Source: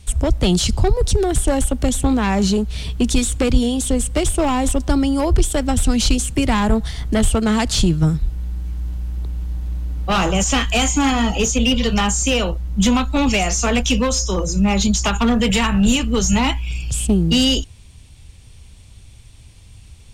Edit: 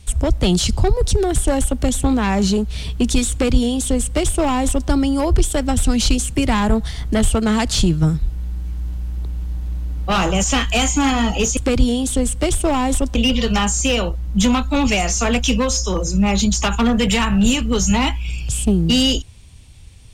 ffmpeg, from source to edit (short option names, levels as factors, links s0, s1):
-filter_complex "[0:a]asplit=3[s0][s1][s2];[s0]atrim=end=11.572[s3];[s1]atrim=start=3.308:end=4.892[s4];[s2]atrim=start=11.568[s5];[s3][s4]acrossfade=d=0.004:c1=hsin:c2=hsin[s6];[s6][s5]acrossfade=d=0.004:c1=hsin:c2=hsin"